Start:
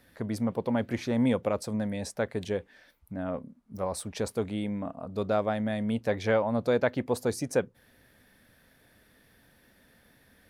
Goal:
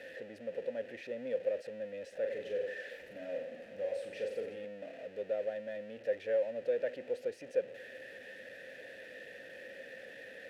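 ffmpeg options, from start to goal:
-filter_complex "[0:a]aeval=exprs='val(0)+0.5*0.0422*sgn(val(0))':c=same,asplit=3[a][b][c];[a]bandpass=f=530:t=q:w=8,volume=0dB[d];[b]bandpass=f=1.84k:t=q:w=8,volume=-6dB[e];[c]bandpass=f=2.48k:t=q:w=8,volume=-9dB[f];[d][e][f]amix=inputs=3:normalize=0,asettb=1/sr,asplit=3[g][h][i];[g]atrim=end=2.204[j];[h]atrim=start=2.2:end=4.65,asetpts=PTS-STARTPTS,afade=t=in:d=0.004:c=qsin,afade=t=out:st=2.446:d=0.004:c=qsin,aecho=1:1:40|92|159.6|247.5|361.7:0.631|0.398|0.251|0.158|0.1,atrim=end_sample=108045[k];[i]atrim=start=4.646[l];[j][k]acrossfade=d=0.004:c1=hsin:c2=qsin[m];[m][l]acrossfade=d=0.004:c1=qsin:c2=hsin,volume=-4dB"

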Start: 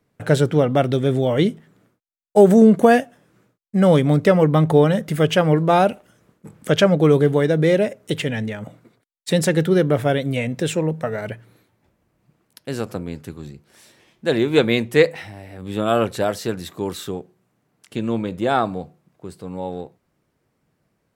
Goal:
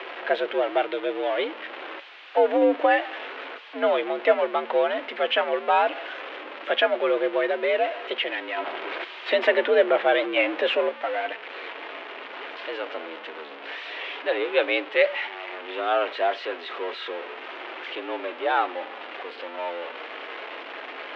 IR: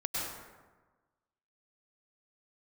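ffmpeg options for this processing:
-filter_complex "[0:a]aeval=exprs='val(0)+0.5*0.075*sgn(val(0))':c=same,aemphasis=mode=production:type=riaa,asettb=1/sr,asplit=3[a][b][c];[a]atrim=end=8.574[d];[b]atrim=start=8.57:end=10.89,asetpts=PTS-STARTPTS,afade=t=in:d=0.004:c=qsin,afade=t=out:st=2.316:d=0.004:c=qsin,acontrast=65[e];[c]atrim=start=10.886[f];[d][e]acrossfade=d=0.004:c1=hsin:c2=qsin[g];[g][f]acrossfade=d=0.004:c1=qsin:c2=hsin,flanger=delay=3.2:depth=1.9:regen=75:speed=0.12:shape=sinusoidal,highpass=f=260:t=q:w=0.5412,highpass=f=260:t=q:w=1.307,lowpass=f=3k:t=q:w=0.5176,lowpass=f=3k:t=q:w=0.7071,lowpass=f=3k:t=q:w=1.932,afreqshift=71"

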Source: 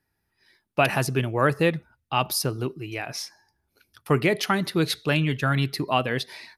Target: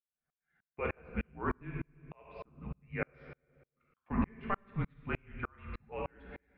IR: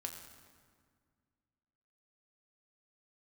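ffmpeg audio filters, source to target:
-filter_complex "[0:a]asettb=1/sr,asplit=3[a][b][c];[a]atrim=end=2.874[d];[b]atrim=start=2.87:end=4.22,asetpts=PTS-STARTPTS,afade=t=in:d=0.004:c=qsin,afade=t=out:st=1.346:d=0.004:c=qsin,acontrast=88[e];[c]atrim=start=4.216[f];[d][e]acrossfade=d=0.004:c1=hsin:c2=qsin[g];[g][f]acrossfade=d=0.004:c1=qsin:c2=hsin,highpass=f=160:t=q:w=0.5412,highpass=f=160:t=q:w=1.307,lowpass=f=2.6k:t=q:w=0.5176,lowpass=f=2.6k:t=q:w=0.7071,lowpass=f=2.6k:t=q:w=1.932,afreqshift=-190[h];[1:a]atrim=start_sample=2205,asetrate=79380,aresample=44100[i];[h][i]afir=irnorm=-1:irlink=0,aeval=exprs='val(0)*pow(10,-39*if(lt(mod(-3.3*n/s,1),2*abs(-3.3)/1000),1-mod(-3.3*n/s,1)/(2*abs(-3.3)/1000),(mod(-3.3*n/s,1)-2*abs(-3.3)/1000)/(1-2*abs(-3.3)/1000))/20)':c=same,volume=1dB"

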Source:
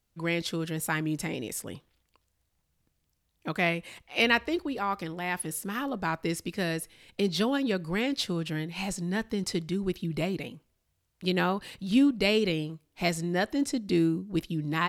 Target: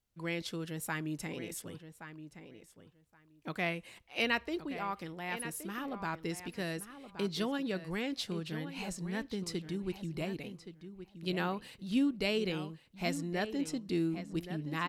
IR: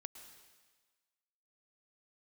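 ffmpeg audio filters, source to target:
-filter_complex "[0:a]asplit=2[a][b];[b]adelay=1122,lowpass=f=3.4k:p=1,volume=-11dB,asplit=2[c][d];[d]adelay=1122,lowpass=f=3.4k:p=1,volume=0.16[e];[a][c][e]amix=inputs=3:normalize=0,volume=-7.5dB"

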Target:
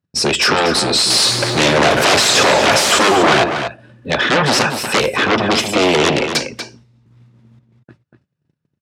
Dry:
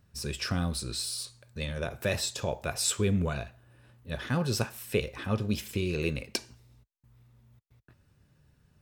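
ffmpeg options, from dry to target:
-filter_complex "[0:a]asettb=1/sr,asplit=3[a][b][c];[a]atrim=end=1.104[d];[b]atrim=start=1.1:end=3.44,asetpts=PTS-STARTPTS,afade=t=in:d=0.004:c=qsin,afade=t=out:st=2.336:d=0.004:c=qsin,aeval=exprs='val(0)+0.5*0.0237*sgn(val(0))':c=same[e];[c]atrim=start=3.436[f];[d][e]acrossfade=d=0.004:c1=hsin:c2=qsin[g];[g][f]acrossfade=d=0.004:c1=qsin:c2=hsin,afftdn=nr=14:nf=-53,agate=range=-27dB:threshold=-60dB:ratio=16:detection=peak,aeval=exprs='0.237*sin(PI/2*7.94*val(0)/0.237)':c=same,highpass=230,lowpass=6.5k,asplit=2[h][i];[i]adelay=239.1,volume=-7dB,highshelf=f=4k:g=-5.38[j];[h][j]amix=inputs=2:normalize=0,volume=4dB"

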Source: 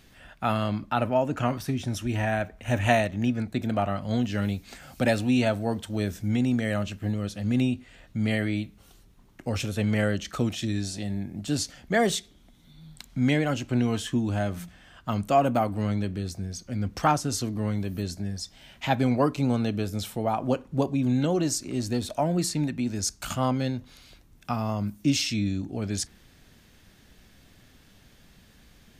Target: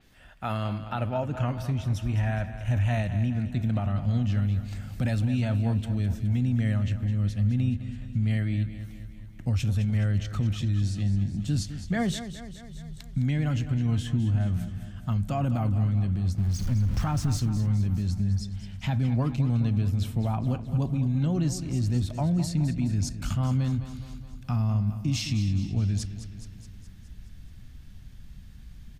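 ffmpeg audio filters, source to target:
-filter_complex "[0:a]asettb=1/sr,asplit=3[a][b][c];[a]atrim=end=16.384[d];[b]atrim=start=16.38:end=17.4,asetpts=PTS-STARTPTS,afade=t=in:d=0.004:c=qsin,afade=t=out:st=1.016:d=0.004:c=qsin,aeval=exprs='val(0)+0.5*0.0237*sgn(val(0))':c=same[e];[c]atrim=start=17.396[f];[d][e]acrossfade=d=0.004:c1=hsin:c2=qsin[g];[g][f]acrossfade=d=0.004:c1=qsin:c2=hsin,asubboost=boost=9:cutoff=140,alimiter=limit=-14.5dB:level=0:latency=1:release=26,asplit=2[h][i];[i]aecho=0:1:210|420|630|840|1050|1260|1470:0.266|0.154|0.0895|0.0519|0.0301|0.0175|0.0101[j];[h][j]amix=inputs=2:normalize=0,adynamicequalizer=threshold=0.00355:dfrequency=5100:dqfactor=0.7:tfrequency=5100:tqfactor=0.7:attack=5:release=100:ratio=0.375:range=2.5:mode=cutabove:tftype=highshelf,volume=-4.5dB"

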